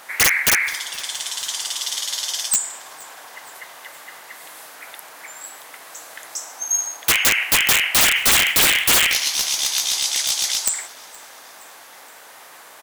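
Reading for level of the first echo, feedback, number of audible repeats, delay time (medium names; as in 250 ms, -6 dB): -23.5 dB, 56%, 3, 470 ms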